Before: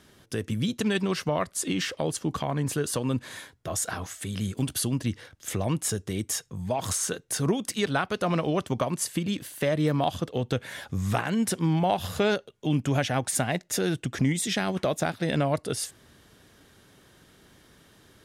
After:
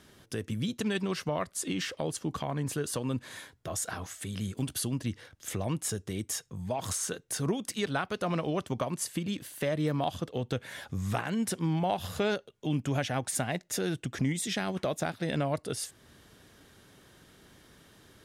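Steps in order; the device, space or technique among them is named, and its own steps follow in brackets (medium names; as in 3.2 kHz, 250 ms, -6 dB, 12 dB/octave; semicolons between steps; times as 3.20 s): parallel compression (in parallel at -3 dB: compression, threshold -44 dBFS, peak gain reduction 22.5 dB); on the sum: trim -5.5 dB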